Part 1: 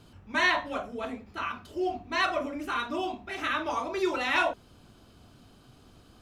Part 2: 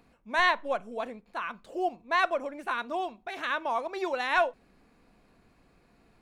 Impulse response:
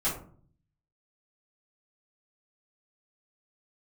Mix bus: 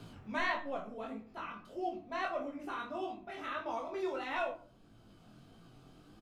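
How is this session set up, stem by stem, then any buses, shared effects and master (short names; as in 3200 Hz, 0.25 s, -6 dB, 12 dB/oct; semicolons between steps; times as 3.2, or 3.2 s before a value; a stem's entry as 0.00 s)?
-2.5 dB, 0.00 s, send -20 dB, tone controls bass +3 dB, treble -3 dB; three-band squash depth 40%; auto duck -10 dB, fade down 0.80 s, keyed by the second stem
-2.0 dB, 2.3 ms, no send, Bessel low-pass 560 Hz, order 2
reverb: on, RT60 0.50 s, pre-delay 3 ms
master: bell 72 Hz -12.5 dB 0.39 oct; chorus 1.6 Hz, delay 17.5 ms, depth 6.3 ms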